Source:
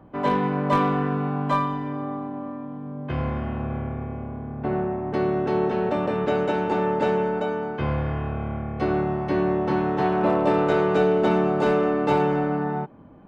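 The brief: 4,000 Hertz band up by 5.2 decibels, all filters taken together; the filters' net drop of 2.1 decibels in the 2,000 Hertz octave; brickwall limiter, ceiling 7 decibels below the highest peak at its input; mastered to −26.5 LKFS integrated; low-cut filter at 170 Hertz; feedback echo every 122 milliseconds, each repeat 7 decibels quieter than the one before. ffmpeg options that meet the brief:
ffmpeg -i in.wav -af "highpass=170,equalizer=frequency=2000:width_type=o:gain=-5,equalizer=frequency=4000:width_type=o:gain=8.5,alimiter=limit=-14.5dB:level=0:latency=1,aecho=1:1:122|244|366|488|610:0.447|0.201|0.0905|0.0407|0.0183,volume=-1.5dB" out.wav

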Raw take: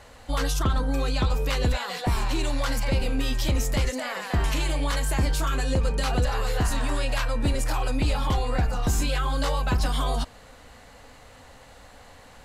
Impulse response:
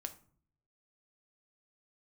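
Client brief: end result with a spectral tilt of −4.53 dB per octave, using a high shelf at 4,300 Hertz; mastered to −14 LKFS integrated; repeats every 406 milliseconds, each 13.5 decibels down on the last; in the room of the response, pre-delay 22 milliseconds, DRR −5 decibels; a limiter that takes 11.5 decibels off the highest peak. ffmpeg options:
-filter_complex "[0:a]highshelf=frequency=4300:gain=9,alimiter=limit=-23dB:level=0:latency=1,aecho=1:1:406|812:0.211|0.0444,asplit=2[link_01][link_02];[1:a]atrim=start_sample=2205,adelay=22[link_03];[link_02][link_03]afir=irnorm=-1:irlink=0,volume=7.5dB[link_04];[link_01][link_04]amix=inputs=2:normalize=0,volume=10.5dB"

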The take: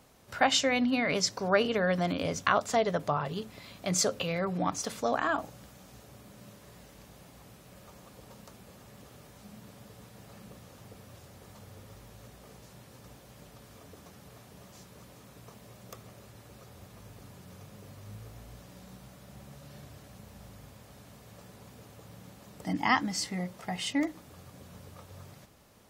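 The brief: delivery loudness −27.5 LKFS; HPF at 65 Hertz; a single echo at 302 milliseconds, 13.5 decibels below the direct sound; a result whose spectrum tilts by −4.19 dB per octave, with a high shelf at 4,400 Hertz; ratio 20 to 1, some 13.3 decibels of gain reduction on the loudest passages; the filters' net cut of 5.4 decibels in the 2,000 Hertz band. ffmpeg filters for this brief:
ffmpeg -i in.wav -af "highpass=65,equalizer=frequency=2000:width_type=o:gain=-8,highshelf=frequency=4400:gain=7,acompressor=threshold=-33dB:ratio=20,aecho=1:1:302:0.211,volume=15.5dB" out.wav

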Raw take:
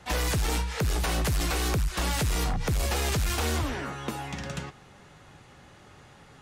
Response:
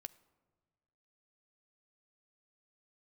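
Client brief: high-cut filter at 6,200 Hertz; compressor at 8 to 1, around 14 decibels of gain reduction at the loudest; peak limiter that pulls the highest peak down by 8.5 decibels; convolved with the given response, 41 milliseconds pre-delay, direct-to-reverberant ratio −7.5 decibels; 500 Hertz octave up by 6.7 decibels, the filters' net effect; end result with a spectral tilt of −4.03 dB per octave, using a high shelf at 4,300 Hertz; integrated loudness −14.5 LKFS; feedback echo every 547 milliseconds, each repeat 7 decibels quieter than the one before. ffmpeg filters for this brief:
-filter_complex "[0:a]lowpass=6200,equalizer=frequency=500:width_type=o:gain=8,highshelf=frequency=4300:gain=7,acompressor=threshold=-37dB:ratio=8,alimiter=level_in=11dB:limit=-24dB:level=0:latency=1,volume=-11dB,aecho=1:1:547|1094|1641|2188|2735:0.447|0.201|0.0905|0.0407|0.0183,asplit=2[link_01][link_02];[1:a]atrim=start_sample=2205,adelay=41[link_03];[link_02][link_03]afir=irnorm=-1:irlink=0,volume=13dB[link_04];[link_01][link_04]amix=inputs=2:normalize=0,volume=19.5dB"

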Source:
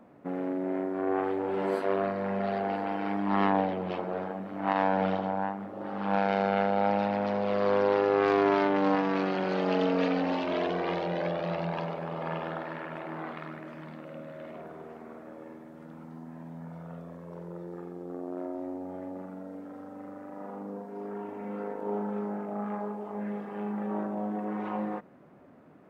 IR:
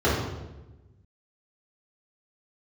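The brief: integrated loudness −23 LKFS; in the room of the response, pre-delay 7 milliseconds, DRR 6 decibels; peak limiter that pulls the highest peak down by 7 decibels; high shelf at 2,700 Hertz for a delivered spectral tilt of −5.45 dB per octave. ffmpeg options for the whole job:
-filter_complex "[0:a]highshelf=frequency=2700:gain=7.5,alimiter=limit=-19.5dB:level=0:latency=1,asplit=2[link_01][link_02];[1:a]atrim=start_sample=2205,adelay=7[link_03];[link_02][link_03]afir=irnorm=-1:irlink=0,volume=-24dB[link_04];[link_01][link_04]amix=inputs=2:normalize=0,volume=6.5dB"

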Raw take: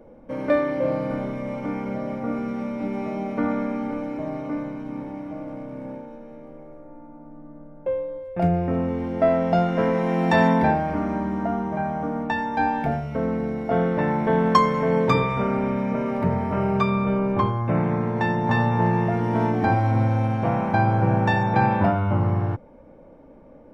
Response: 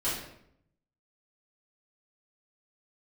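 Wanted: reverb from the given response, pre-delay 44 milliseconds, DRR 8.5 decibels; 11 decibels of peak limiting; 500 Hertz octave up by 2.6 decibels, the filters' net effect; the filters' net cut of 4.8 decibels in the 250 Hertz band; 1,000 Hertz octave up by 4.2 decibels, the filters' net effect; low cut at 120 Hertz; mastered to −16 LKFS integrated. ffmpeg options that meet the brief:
-filter_complex "[0:a]highpass=120,equalizer=frequency=250:width_type=o:gain=-7,equalizer=frequency=500:width_type=o:gain=3.5,equalizer=frequency=1000:width_type=o:gain=4.5,alimiter=limit=-12dB:level=0:latency=1,asplit=2[link_01][link_02];[1:a]atrim=start_sample=2205,adelay=44[link_03];[link_02][link_03]afir=irnorm=-1:irlink=0,volume=-16.5dB[link_04];[link_01][link_04]amix=inputs=2:normalize=0,volume=7dB"

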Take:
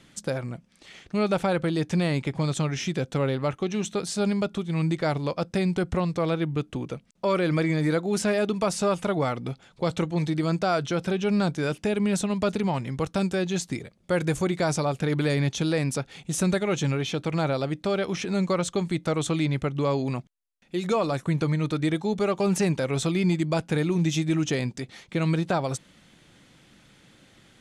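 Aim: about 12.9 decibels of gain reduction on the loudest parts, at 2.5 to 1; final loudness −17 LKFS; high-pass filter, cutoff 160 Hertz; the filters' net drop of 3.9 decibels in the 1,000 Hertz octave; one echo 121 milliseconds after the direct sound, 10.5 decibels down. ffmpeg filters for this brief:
ffmpeg -i in.wav -af "highpass=160,equalizer=frequency=1000:width_type=o:gain=-5.5,acompressor=threshold=-42dB:ratio=2.5,aecho=1:1:121:0.299,volume=23dB" out.wav

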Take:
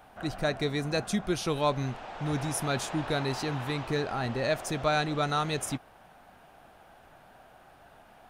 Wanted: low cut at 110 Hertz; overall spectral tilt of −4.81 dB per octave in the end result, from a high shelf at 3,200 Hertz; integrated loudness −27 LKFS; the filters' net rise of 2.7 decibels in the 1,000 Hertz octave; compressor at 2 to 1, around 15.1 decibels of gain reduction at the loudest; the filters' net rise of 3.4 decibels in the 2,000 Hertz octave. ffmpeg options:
ffmpeg -i in.wav -af "highpass=110,equalizer=frequency=1000:width_type=o:gain=3,equalizer=frequency=2000:width_type=o:gain=4.5,highshelf=frequency=3200:gain=-3.5,acompressor=threshold=-49dB:ratio=2,volume=15.5dB" out.wav

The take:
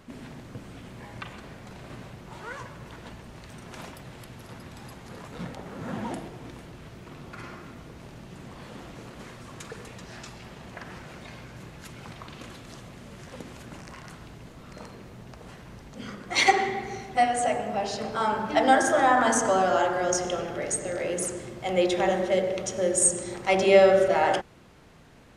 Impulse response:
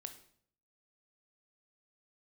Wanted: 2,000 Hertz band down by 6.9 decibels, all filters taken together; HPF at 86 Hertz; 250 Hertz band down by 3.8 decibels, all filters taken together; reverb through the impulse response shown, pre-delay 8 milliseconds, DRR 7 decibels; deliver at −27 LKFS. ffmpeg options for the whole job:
-filter_complex "[0:a]highpass=86,equalizer=frequency=250:width_type=o:gain=-5.5,equalizer=frequency=2000:width_type=o:gain=-8.5,asplit=2[link_01][link_02];[1:a]atrim=start_sample=2205,adelay=8[link_03];[link_02][link_03]afir=irnorm=-1:irlink=0,volume=-2.5dB[link_04];[link_01][link_04]amix=inputs=2:normalize=0,volume=-2dB"

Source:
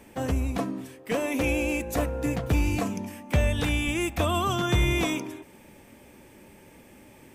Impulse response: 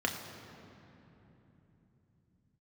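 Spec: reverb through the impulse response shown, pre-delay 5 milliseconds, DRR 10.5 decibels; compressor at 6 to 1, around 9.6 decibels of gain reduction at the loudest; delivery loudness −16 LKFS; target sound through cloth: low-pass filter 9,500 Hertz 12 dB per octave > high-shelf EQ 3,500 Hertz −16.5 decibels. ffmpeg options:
-filter_complex "[0:a]acompressor=threshold=-29dB:ratio=6,asplit=2[link_01][link_02];[1:a]atrim=start_sample=2205,adelay=5[link_03];[link_02][link_03]afir=irnorm=-1:irlink=0,volume=-18dB[link_04];[link_01][link_04]amix=inputs=2:normalize=0,lowpass=9500,highshelf=frequency=3500:gain=-16.5,volume=18.5dB"

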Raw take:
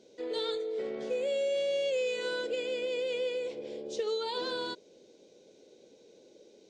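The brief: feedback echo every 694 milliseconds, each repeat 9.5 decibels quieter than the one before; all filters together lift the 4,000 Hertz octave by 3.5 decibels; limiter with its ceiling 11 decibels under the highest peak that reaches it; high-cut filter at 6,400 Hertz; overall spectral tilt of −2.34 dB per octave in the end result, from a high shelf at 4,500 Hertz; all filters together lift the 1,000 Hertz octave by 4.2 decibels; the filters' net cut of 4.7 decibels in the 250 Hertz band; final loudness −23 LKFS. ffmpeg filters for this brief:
ffmpeg -i in.wav -af "lowpass=6400,equalizer=frequency=250:width_type=o:gain=-8,equalizer=frequency=1000:width_type=o:gain=5,equalizer=frequency=4000:width_type=o:gain=8,highshelf=frequency=4500:gain=-8,alimiter=level_in=8dB:limit=-24dB:level=0:latency=1,volume=-8dB,aecho=1:1:694|1388|2082|2776:0.335|0.111|0.0365|0.012,volume=15.5dB" out.wav

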